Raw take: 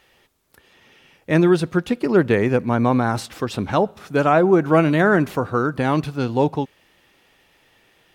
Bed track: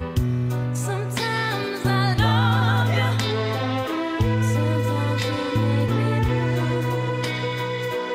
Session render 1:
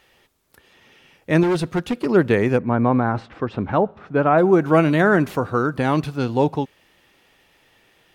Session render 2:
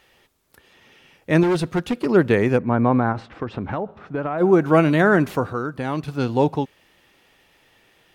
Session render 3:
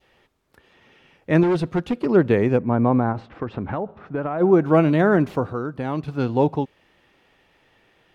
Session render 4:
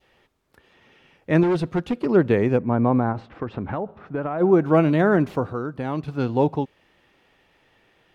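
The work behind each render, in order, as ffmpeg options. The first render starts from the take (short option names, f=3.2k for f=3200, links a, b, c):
-filter_complex "[0:a]asettb=1/sr,asplit=3[a][b][c];[a]atrim=end=1.434[d];[b]atrim=start=1.43:end=2.06,asetpts=PTS-STARTPTS,afade=t=in:d=0.004:c=qsin,afade=t=out:st=0.626:d=0.004:c=qsin,asoftclip=type=hard:threshold=-16.5dB[e];[c]atrim=start=2.056[f];[d][e]acrossfade=d=0.004:c1=hsin:c2=qsin[g];[g][f]acrossfade=d=0.004:c1=qsin:c2=hsin,asplit=3[h][i][j];[h]afade=t=out:st=2.58:d=0.02[k];[i]lowpass=1.9k,afade=t=in:st=2.58:d=0.02,afade=t=out:st=4.37:d=0.02[l];[j]afade=t=in:st=4.37:d=0.02[m];[k][l][m]amix=inputs=3:normalize=0"
-filter_complex "[0:a]asplit=3[a][b][c];[a]afade=t=out:st=3.12:d=0.02[d];[b]acompressor=threshold=-21dB:ratio=6:attack=3.2:release=140:knee=1:detection=peak,afade=t=in:st=3.12:d=0.02,afade=t=out:st=4.4:d=0.02[e];[c]afade=t=in:st=4.4:d=0.02[f];[d][e][f]amix=inputs=3:normalize=0,asplit=3[g][h][i];[g]atrim=end=5.532[j];[h]atrim=start=5.528:end=6.082,asetpts=PTS-STARTPTS,volume=-6dB[k];[i]atrim=start=6.078[l];[j][k]acrossfade=d=0.004:c1=hsin:c2=hsin[m];[m][l]acrossfade=d=0.004:c1=hsin:c2=hsin"
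-af "lowpass=f=2.4k:p=1,adynamicequalizer=threshold=0.0112:dfrequency=1600:dqfactor=1.3:tfrequency=1600:tqfactor=1.3:attack=5:release=100:ratio=0.375:range=2.5:mode=cutabove:tftype=bell"
-af "volume=-1dB"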